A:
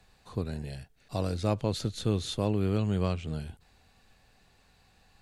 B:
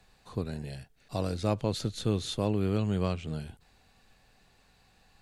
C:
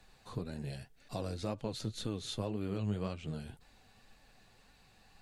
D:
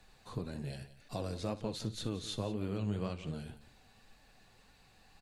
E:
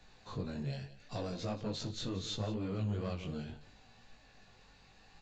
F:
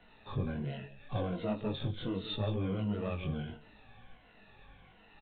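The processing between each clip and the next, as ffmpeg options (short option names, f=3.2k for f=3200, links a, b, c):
-af "equalizer=f=75:t=o:w=0.58:g=-4.5"
-af "acompressor=threshold=-39dB:ratio=2,flanger=delay=3.3:depth=6.3:regen=46:speed=1.9:shape=sinusoidal,volume=4dB"
-af "aecho=1:1:61|176:0.158|0.168"
-af "aresample=16000,asoftclip=type=tanh:threshold=-31dB,aresample=44100,flanger=delay=17:depth=4.9:speed=0.74,volume=5dB"
-af "afftfilt=real='re*pow(10,12/40*sin(2*PI*(1.9*log(max(b,1)*sr/1024/100)/log(2)-(-1.4)*(pts-256)/sr)))':imag='im*pow(10,12/40*sin(2*PI*(1.9*log(max(b,1)*sr/1024/100)/log(2)-(-1.4)*(pts-256)/sr)))':win_size=1024:overlap=0.75,aresample=8000,aresample=44100,volume=2dB"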